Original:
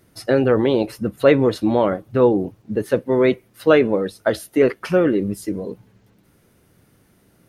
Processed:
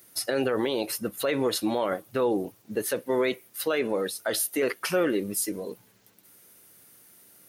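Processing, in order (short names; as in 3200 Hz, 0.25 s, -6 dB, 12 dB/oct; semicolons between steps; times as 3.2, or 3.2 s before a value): RIAA curve recording; limiter -14 dBFS, peak gain reduction 11.5 dB; gain -2.5 dB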